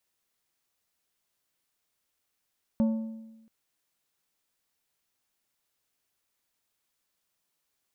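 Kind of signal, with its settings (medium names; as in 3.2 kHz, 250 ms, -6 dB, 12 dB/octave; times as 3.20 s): metal hit plate, length 0.68 s, lowest mode 223 Hz, decay 1.08 s, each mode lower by 11.5 dB, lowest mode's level -19.5 dB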